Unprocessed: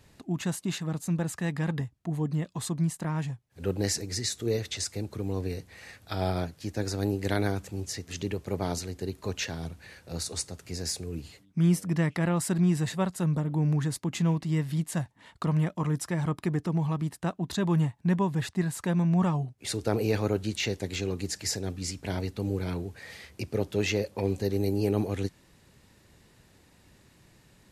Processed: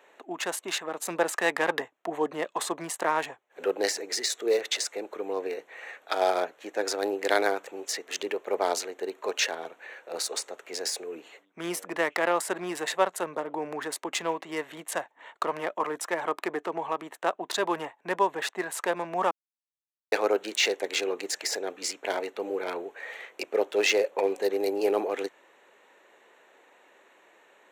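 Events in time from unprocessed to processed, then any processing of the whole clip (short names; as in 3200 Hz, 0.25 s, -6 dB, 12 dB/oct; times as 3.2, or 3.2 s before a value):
1–3.64 gain +4.5 dB
19.31–20.12 mute
whole clip: Wiener smoothing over 9 samples; HPF 440 Hz 24 dB/oct; de-esser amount 70%; gain +8.5 dB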